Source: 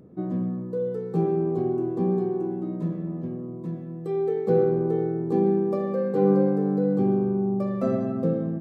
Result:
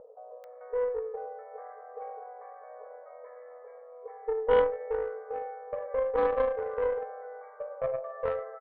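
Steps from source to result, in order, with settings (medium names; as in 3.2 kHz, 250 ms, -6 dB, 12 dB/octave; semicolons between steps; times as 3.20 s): FFT band-pass 420–2300 Hz; upward compressor, threshold -39 dBFS; bands offset in time lows, highs 440 ms, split 840 Hz; Chebyshev shaper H 3 -17 dB, 4 -14 dB, 6 -21 dB, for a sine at -17 dBFS; trim +3.5 dB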